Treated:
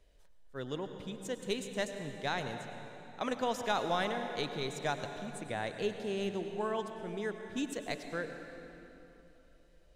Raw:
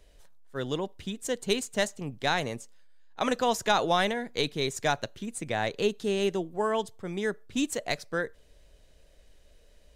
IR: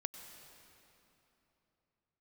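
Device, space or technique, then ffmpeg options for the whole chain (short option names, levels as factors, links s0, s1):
swimming-pool hall: -filter_complex "[1:a]atrim=start_sample=2205[s0];[0:a][s0]afir=irnorm=-1:irlink=0,highshelf=f=4600:g=-5,volume=0.562"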